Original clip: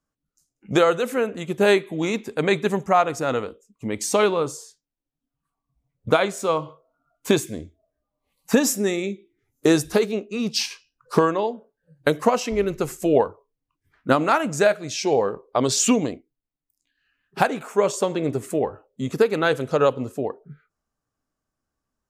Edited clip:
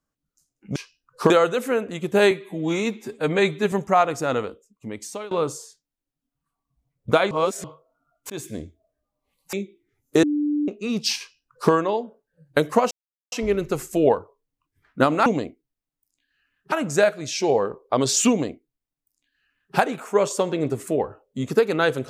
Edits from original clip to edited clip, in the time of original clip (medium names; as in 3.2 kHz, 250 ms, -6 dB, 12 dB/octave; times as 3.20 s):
1.77–2.71 s: stretch 1.5×
3.43–4.30 s: fade out, to -23 dB
6.30–6.63 s: reverse
7.29–7.55 s: fade in
8.52–9.03 s: delete
9.73–10.18 s: bleep 295 Hz -19.5 dBFS
10.68–11.22 s: copy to 0.76 s
12.41 s: insert silence 0.41 s
15.93–17.39 s: copy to 14.35 s